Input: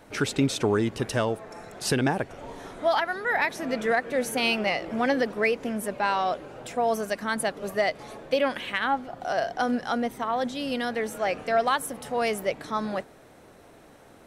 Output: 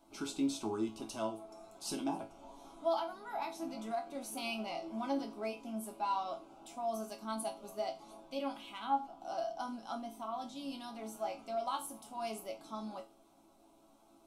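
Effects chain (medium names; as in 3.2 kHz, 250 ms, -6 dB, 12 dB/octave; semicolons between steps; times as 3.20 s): static phaser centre 480 Hz, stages 6; chord resonator A2 major, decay 0.28 s; trim +3 dB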